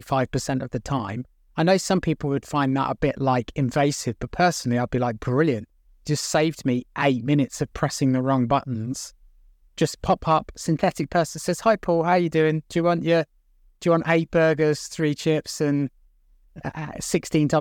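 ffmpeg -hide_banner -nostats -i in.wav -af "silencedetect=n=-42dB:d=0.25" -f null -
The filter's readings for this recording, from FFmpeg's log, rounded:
silence_start: 1.25
silence_end: 1.57 | silence_duration: 0.32
silence_start: 5.64
silence_end: 6.06 | silence_duration: 0.42
silence_start: 9.10
silence_end: 9.78 | silence_duration: 0.68
silence_start: 13.24
silence_end: 13.82 | silence_duration: 0.58
silence_start: 15.88
silence_end: 16.56 | silence_duration: 0.68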